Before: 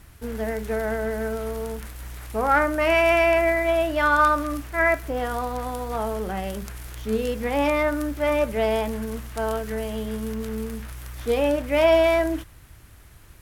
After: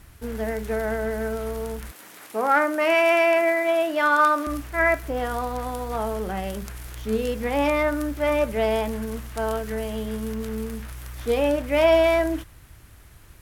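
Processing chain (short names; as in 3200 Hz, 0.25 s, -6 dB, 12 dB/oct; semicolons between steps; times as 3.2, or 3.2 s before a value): 1.91–4.47 HPF 220 Hz 24 dB/oct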